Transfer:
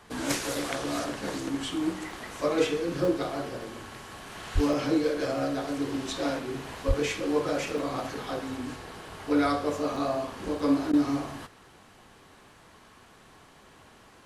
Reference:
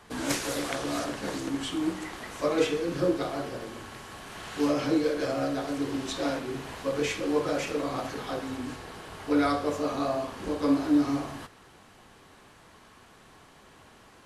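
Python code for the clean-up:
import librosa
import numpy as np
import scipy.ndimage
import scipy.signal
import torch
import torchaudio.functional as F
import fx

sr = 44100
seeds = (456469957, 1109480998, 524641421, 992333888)

y = fx.highpass(x, sr, hz=140.0, slope=24, at=(4.54, 4.66), fade=0.02)
y = fx.highpass(y, sr, hz=140.0, slope=24, at=(6.87, 6.99), fade=0.02)
y = fx.fix_interpolate(y, sr, at_s=(0.55, 2.11, 3.05, 4.73, 7.78, 9.96, 10.59), length_ms=2.0)
y = fx.fix_interpolate(y, sr, at_s=(10.92,), length_ms=11.0)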